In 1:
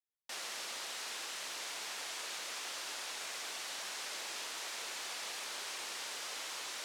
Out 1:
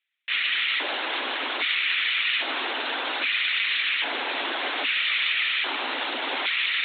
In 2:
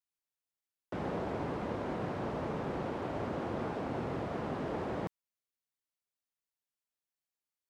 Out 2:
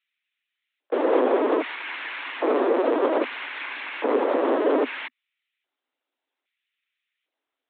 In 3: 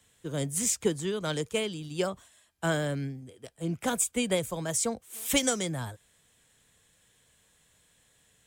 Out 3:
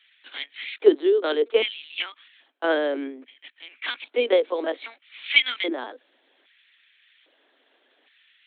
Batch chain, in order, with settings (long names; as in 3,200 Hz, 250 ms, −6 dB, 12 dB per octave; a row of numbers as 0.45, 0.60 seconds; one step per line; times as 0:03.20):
auto-filter high-pass square 0.62 Hz 350–2,200 Hz
linear-prediction vocoder at 8 kHz pitch kept
Butterworth high-pass 250 Hz 96 dB per octave
loudness normalisation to −24 LKFS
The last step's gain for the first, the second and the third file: +17.0, +14.5, +6.5 decibels